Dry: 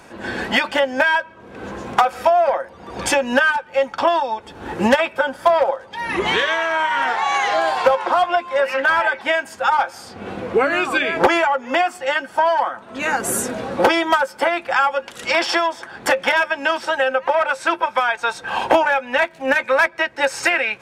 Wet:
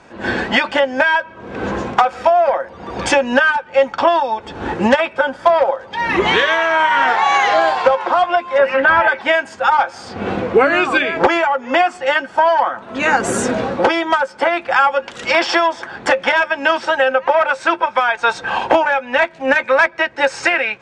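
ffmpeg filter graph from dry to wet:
-filter_complex "[0:a]asettb=1/sr,asplit=3[a][b][c];[a]atrim=end=8.584[d];[b]atrim=start=8.58:end=9.08,asetpts=PTS-STARTPTS,afade=t=in:d=0.004:c=qsin,afade=t=out:st=0.496:d=0.004:c=qsin,acrossover=split=3500[e][f];[f]acompressor=threshold=-49dB:ratio=4:attack=1:release=60[g];[e][g]amix=inputs=2:normalize=0,lowshelf=f=250:g=8.5[h];[c]atrim=start=9.076[i];[d][h]acrossfade=d=0.004:c1=hsin:c2=qsin[j];[j][i]acrossfade=d=0.004:c1=qsin:c2=hsin,lowpass=f=8.1k:w=0.5412,lowpass=f=8.1k:w=1.3066,highshelf=f=5.4k:g=-6.5,dynaudnorm=f=150:g=3:m=11dB,volume=-1dB"

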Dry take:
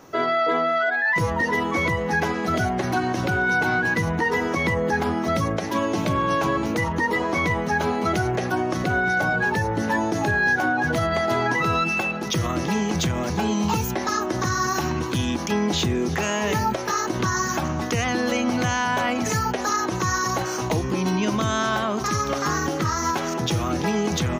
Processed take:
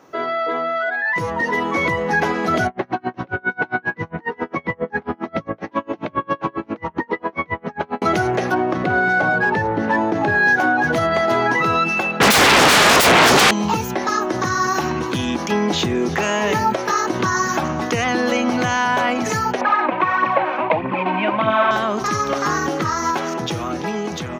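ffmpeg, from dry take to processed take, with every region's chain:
-filter_complex "[0:a]asettb=1/sr,asplit=3[a][b][c];[a]atrim=end=2.674[d];[b]atrim=start=2.67:end=8.02,asetpts=PTS-STARTPTS,afade=t=in:d=0.004:c=qsin,afade=t=out:st=5.346:d=0.004:c=qsin,lowpass=2.7k,aeval=exprs='val(0)*pow(10,-35*(0.5-0.5*cos(2*PI*7.4*n/s))/20)':c=same[e];[c]atrim=start=8.016[f];[d][e]acrossfade=d=0.004:c1=hsin:c2=qsin[g];[g][f]acrossfade=d=0.004:c1=qsin:c2=hsin,asettb=1/sr,asplit=3[h][i][j];[h]atrim=end=8.544[k];[i]atrim=start=8.54:end=10.35,asetpts=PTS-STARTPTS,afade=t=in:d=0.004:c=qsin,afade=t=out:st=1.806:d=0.004:c=qsin,adynamicsmooth=sensitivity=3:basefreq=3k,equalizer=f=11k:w=0.32:g=-6[l];[j]atrim=start=10.346[m];[k][l]acrossfade=d=0.004:c1=hsin:c2=qsin[n];[n][m]acrossfade=d=0.004:c1=qsin:c2=hsin,asettb=1/sr,asplit=3[o][p][q];[o]atrim=end=12.204[r];[p]atrim=start=12.2:end=13.51,asetpts=PTS-STARTPTS,afade=t=in:d=0.004:c=qsin,afade=t=out:st=1.306:d=0.004:c=qsin,highpass=93,bandreject=f=980:w=15,aeval=exprs='0.251*sin(PI/2*8.91*val(0)/0.251)':c=same[s];[q]atrim=start=13.506[t];[r][s]acrossfade=d=0.004:c1=hsin:c2=qsin[u];[u][t]acrossfade=d=0.004:c1=qsin:c2=hsin,asettb=1/sr,asplit=3[v][w][x];[v]atrim=end=19.614[y];[w]atrim=start=19.61:end=21.71,asetpts=PTS-STARTPTS,afade=t=in:d=0.004:c=qsin,afade=t=out:st=2.096:d=0.004:c=qsin,adynamicsmooth=sensitivity=8:basefreq=660,aphaser=in_gain=1:out_gain=1:delay=4.1:decay=0.52:speed=1.6:type=triangular,highpass=180,equalizer=f=410:t=q:w=4:g=-9,equalizer=f=600:t=q:w=4:g=8,equalizer=f=920:t=q:w=4:g=6,equalizer=f=2.4k:t=q:w=4:g=8,lowpass=f=3k:w=0.5412,lowpass=f=3k:w=1.3066[z];[x]atrim=start=21.706[aa];[y][z]acrossfade=d=0.004:c1=hsin:c2=qsin[ab];[ab][aa]acrossfade=d=0.004:c1=qsin:c2=hsin,highpass=f=240:p=1,highshelf=f=4.7k:g=-8.5,dynaudnorm=f=610:g=5:m=6.5dB"

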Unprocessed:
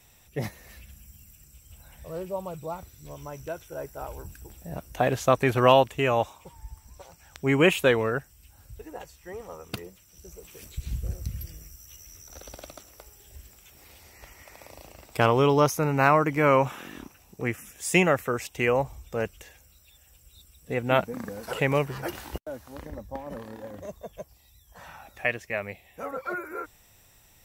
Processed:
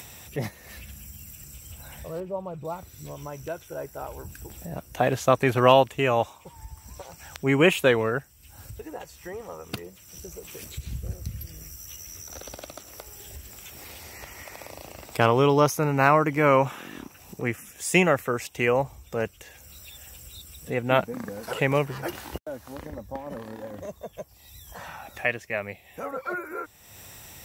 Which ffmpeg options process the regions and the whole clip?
-filter_complex "[0:a]asettb=1/sr,asplit=3[a][b][c];[a]atrim=end=2.204[d];[b]atrim=start=2.2:end=2.65,asetpts=PTS-STARTPTS,afade=t=in:d=0.004:c=qsin,afade=t=out:st=0.446:d=0.004:c=qsin,lowpass=f=1.4k:p=1,acompressor=mode=upward:threshold=-38dB:ratio=2.5:attack=3.2:release=140:knee=2.83:detection=peak[e];[c]atrim=start=2.646[f];[d][e]acrossfade=d=0.004:c1=hsin:c2=qsin[g];[g][f]acrossfade=d=0.004:c1=qsin:c2=hsin,highpass=67,acompressor=mode=upward:threshold=-34dB:ratio=2.5,volume=1dB"

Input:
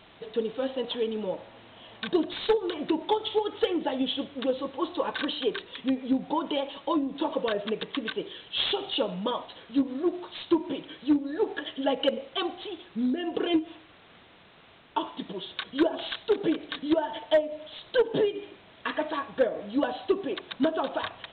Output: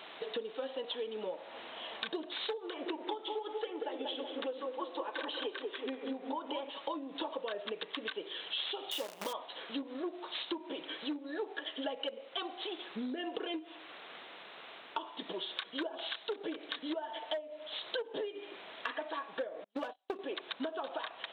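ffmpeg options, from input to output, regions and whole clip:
-filter_complex "[0:a]asettb=1/sr,asplit=3[a][b][c];[a]atrim=end=2.674[d];[b]atrim=start=2.67:end=6.7,asetpts=PTS-STARTPTS,afade=t=in:d=0.004:c=qsin,afade=t=out:st=4.026:d=0.004:c=qsin,lowpass=3.6k,equalizer=f=170:t=o:w=0.55:g=-14,asplit=2[e][f];[f]adelay=187,lowpass=f=960:p=1,volume=-3.5dB,asplit=2[g][h];[h]adelay=187,lowpass=f=960:p=1,volume=0.51,asplit=2[i][j];[j]adelay=187,lowpass=f=960:p=1,volume=0.51,asplit=2[k][l];[l]adelay=187,lowpass=f=960:p=1,volume=0.51,asplit=2[m][n];[n]adelay=187,lowpass=f=960:p=1,volume=0.51,asplit=2[o][p];[p]adelay=187,lowpass=f=960:p=1,volume=0.51,asplit=2[q][r];[r]adelay=187,lowpass=f=960:p=1,volume=0.51[s];[e][g][i][k][m][o][q][s]amix=inputs=8:normalize=0,atrim=end_sample=177723[t];[c]atrim=start=6.696[u];[d][t]acrossfade=d=0.004:c1=hsin:c2=qsin[v];[v][u]acrossfade=d=0.004:c1=qsin:c2=hsin,asettb=1/sr,asplit=3[w][x][y];[w]atrim=end=8.914[z];[x]atrim=start=8.91:end=9.33,asetpts=PTS-STARTPTS,afade=t=in:d=0.004:c=qsin,afade=t=out:st=0.416:d=0.004:c=qsin,asuperstop=centerf=1400:order=8:qfactor=4.1,bandreject=f=60:t=h:w=6,bandreject=f=120:t=h:w=6,bandreject=f=180:t=h:w=6,acrusher=bits=6:dc=4:mix=0:aa=0.000001[aa];[y]atrim=start=9.326[ab];[z][aa]acrossfade=d=0.004:c1=hsin:c2=qsin[ac];[ac][ab]acrossfade=d=0.004:c1=qsin:c2=hsin,asettb=1/sr,asplit=3[ad][ae][af];[ad]atrim=end=19.644[ag];[ae]atrim=start=19.64:end=20.19,asetpts=PTS-STARTPTS,afade=t=in:d=0.004:c=qsin,afade=t=out:st=0.546:d=0.004:c=qsin,agate=range=-41dB:threshold=-31dB:ratio=16:release=100:detection=peak,aeval=exprs='clip(val(0),-1,0.0376)':c=same[ah];[af]atrim=start=20.186[ai];[ag][ah]acrossfade=d=0.004:c1=hsin:c2=qsin[aj];[aj][ai]acrossfade=d=0.004:c1=qsin:c2=hsin,highpass=420,acompressor=threshold=-42dB:ratio=6,volume=5.5dB"

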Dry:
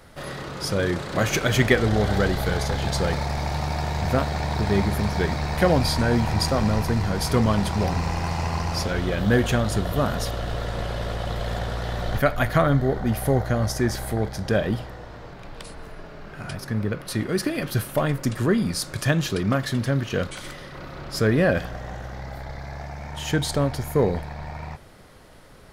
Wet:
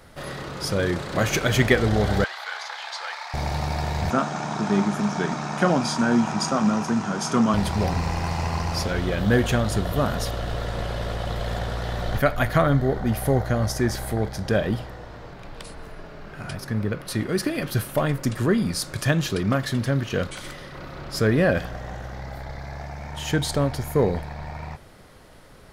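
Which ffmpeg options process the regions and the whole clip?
-filter_complex "[0:a]asettb=1/sr,asplit=3[a][b][c];[a]atrim=end=2.244[d];[b]atrim=start=2.24:end=3.34,asetpts=PTS-STARTPTS,afade=t=in:d=0.004:c=qsin,afade=t=out:st=1.096:d=0.004:c=qsin,acrossover=split=6500[e][f];[f]acompressor=threshold=-53dB:ratio=4:attack=1:release=60[g];[e][g]amix=inputs=2:normalize=0,highpass=f=920:w=0.5412,highpass=f=920:w=1.3066,highshelf=f=7.6k:g=-8.5[h];[c]atrim=start=3.336[i];[d][h]acrossfade=d=0.004:c1=hsin:c2=qsin[j];[j][i]acrossfade=d=0.004:c1=qsin:c2=hsin,asettb=1/sr,asplit=3[k][l][m];[k]atrim=end=4.104[n];[l]atrim=start=4.1:end=7.54,asetpts=PTS-STARTPTS,afade=t=in:d=0.004:c=qsin,afade=t=out:st=3.436:d=0.004:c=qsin,highpass=f=160:w=0.5412,highpass=f=160:w=1.3066,equalizer=f=220:t=q:w=4:g=5,equalizer=f=490:t=q:w=4:g=-7,equalizer=f=1.3k:t=q:w=4:g=7,equalizer=f=2k:t=q:w=4:g=-7,equalizer=f=4.3k:t=q:w=4:g=-9,equalizer=f=6.4k:t=q:w=4:g=6,lowpass=f=8.7k:w=0.5412,lowpass=f=8.7k:w=1.3066,asplit=2[o][p];[p]adelay=34,volume=-12.5dB[q];[o][q]amix=inputs=2:normalize=0,atrim=end_sample=151704[r];[m]atrim=start=7.536[s];[n][r]acrossfade=d=0.004:c1=hsin:c2=qsin[t];[t][s]acrossfade=d=0.004:c1=qsin:c2=hsin"

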